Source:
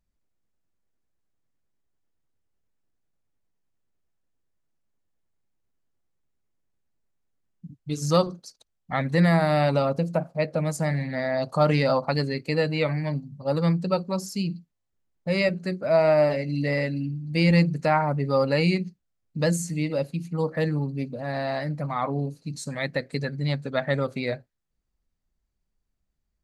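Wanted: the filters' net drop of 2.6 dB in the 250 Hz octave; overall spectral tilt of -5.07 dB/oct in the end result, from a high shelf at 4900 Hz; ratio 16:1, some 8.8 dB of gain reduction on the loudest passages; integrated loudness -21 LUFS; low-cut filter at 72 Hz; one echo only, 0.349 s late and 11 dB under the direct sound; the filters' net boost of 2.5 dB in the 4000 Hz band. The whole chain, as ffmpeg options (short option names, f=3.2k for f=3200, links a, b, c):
-af "highpass=72,equalizer=f=250:t=o:g=-4.5,equalizer=f=4k:t=o:g=4.5,highshelf=f=4.9k:g=-3.5,acompressor=threshold=-24dB:ratio=16,aecho=1:1:349:0.282,volume=9.5dB"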